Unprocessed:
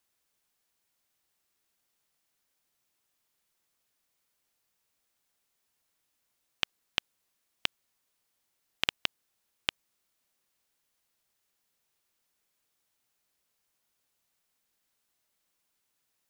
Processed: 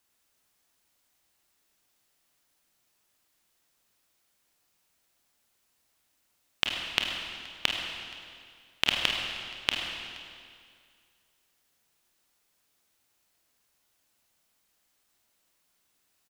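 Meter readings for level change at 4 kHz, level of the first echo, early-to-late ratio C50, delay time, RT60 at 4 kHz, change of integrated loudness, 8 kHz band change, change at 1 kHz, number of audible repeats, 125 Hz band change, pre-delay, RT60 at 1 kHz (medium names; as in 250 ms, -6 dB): +6.5 dB, -22.0 dB, 2.0 dB, 474 ms, 1.9 s, +4.5 dB, +6.0 dB, +6.5 dB, 1, +6.5 dB, 26 ms, 2.1 s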